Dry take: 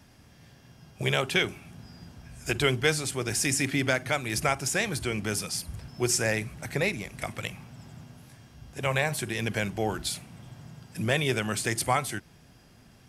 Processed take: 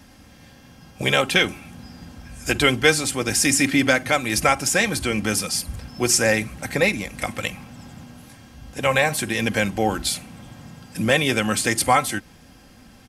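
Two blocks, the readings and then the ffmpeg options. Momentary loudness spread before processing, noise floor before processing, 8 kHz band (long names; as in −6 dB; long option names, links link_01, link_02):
21 LU, −56 dBFS, +8.0 dB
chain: -af "aecho=1:1:3.8:0.49,volume=7dB"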